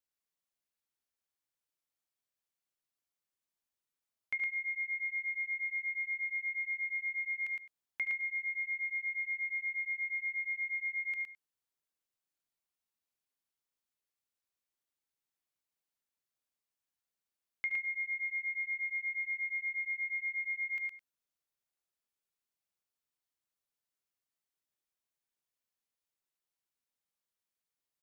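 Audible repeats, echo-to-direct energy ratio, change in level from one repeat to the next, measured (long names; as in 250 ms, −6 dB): 3, −3.5 dB, repeats not evenly spaced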